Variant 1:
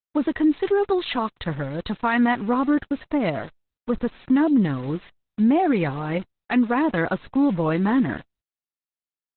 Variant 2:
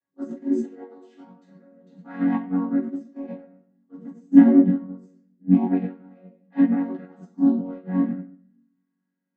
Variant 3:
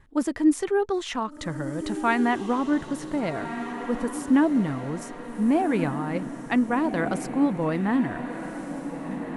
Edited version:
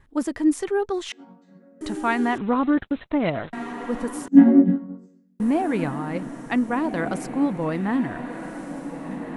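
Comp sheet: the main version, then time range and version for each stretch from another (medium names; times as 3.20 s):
3
1.12–1.81 s: from 2
2.38–3.53 s: from 1
4.28–5.40 s: from 2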